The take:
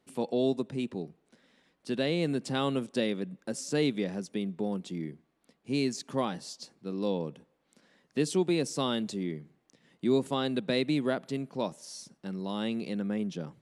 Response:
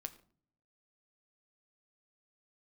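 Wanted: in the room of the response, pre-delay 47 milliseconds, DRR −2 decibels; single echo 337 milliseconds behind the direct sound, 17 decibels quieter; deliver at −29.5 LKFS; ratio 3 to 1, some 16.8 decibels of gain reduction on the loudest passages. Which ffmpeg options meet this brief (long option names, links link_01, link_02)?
-filter_complex "[0:a]acompressor=threshold=-46dB:ratio=3,aecho=1:1:337:0.141,asplit=2[link_01][link_02];[1:a]atrim=start_sample=2205,adelay=47[link_03];[link_02][link_03]afir=irnorm=-1:irlink=0,volume=5.5dB[link_04];[link_01][link_04]amix=inputs=2:normalize=0,volume=12.5dB"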